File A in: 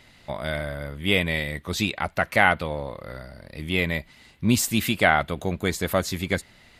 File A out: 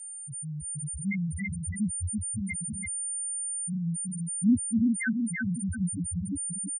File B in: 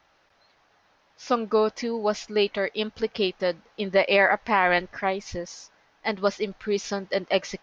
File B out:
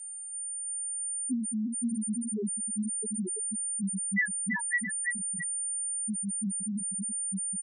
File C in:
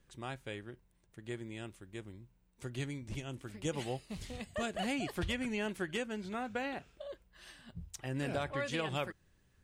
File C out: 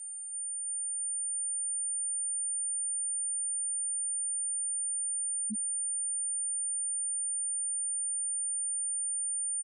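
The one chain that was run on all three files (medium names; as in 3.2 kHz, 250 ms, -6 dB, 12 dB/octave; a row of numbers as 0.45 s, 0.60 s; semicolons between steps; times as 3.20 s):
LFO low-pass saw down 3.6 Hz 500–2200 Hz; whistle 9 kHz -52 dBFS; FFT filter 270 Hz 0 dB, 530 Hz -23 dB, 6.7 kHz +13 dB; feedback delay 335 ms, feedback 56%, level -3 dB; loudest bins only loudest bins 1; trim +4.5 dB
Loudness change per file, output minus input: -5.5 LU, -5.5 LU, +9.5 LU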